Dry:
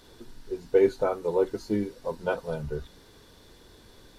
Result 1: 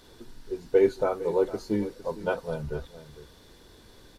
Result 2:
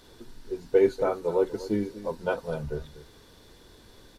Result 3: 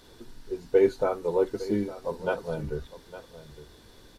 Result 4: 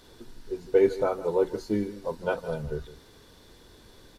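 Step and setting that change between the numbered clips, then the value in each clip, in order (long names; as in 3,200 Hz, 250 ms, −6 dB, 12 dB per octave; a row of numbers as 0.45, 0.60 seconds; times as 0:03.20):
single-tap delay, delay time: 457, 242, 859, 160 milliseconds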